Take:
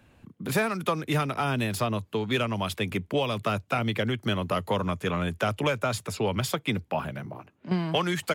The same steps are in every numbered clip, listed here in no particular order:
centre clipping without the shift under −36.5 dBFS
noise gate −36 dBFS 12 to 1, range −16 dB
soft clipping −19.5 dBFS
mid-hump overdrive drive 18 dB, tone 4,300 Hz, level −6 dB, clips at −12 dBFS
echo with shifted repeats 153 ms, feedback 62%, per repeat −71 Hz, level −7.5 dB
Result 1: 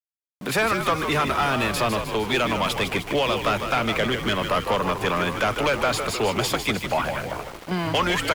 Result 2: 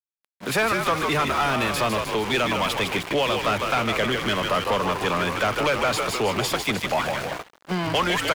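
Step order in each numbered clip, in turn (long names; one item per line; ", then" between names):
soft clipping, then mid-hump overdrive, then noise gate, then echo with shifted repeats, then centre clipping without the shift
echo with shifted repeats, then centre clipping without the shift, then noise gate, then soft clipping, then mid-hump overdrive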